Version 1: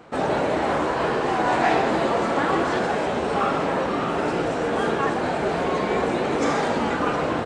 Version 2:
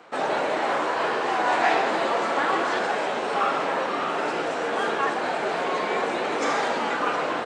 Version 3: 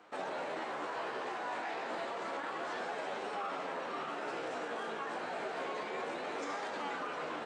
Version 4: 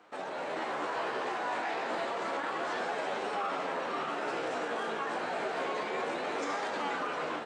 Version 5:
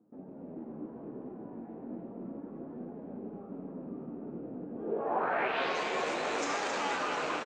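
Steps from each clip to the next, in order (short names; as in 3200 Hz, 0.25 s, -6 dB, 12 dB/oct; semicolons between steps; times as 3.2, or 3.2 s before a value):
weighting filter A
limiter -21 dBFS, peak gain reduction 11 dB; flange 0.3 Hz, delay 9.5 ms, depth 8.6 ms, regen +42%; gain -6 dB
AGC gain up to 5 dB
rattling part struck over -49 dBFS, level -33 dBFS; low-pass sweep 230 Hz -> 6900 Hz, 4.73–5.81; echo 0.268 s -6.5 dB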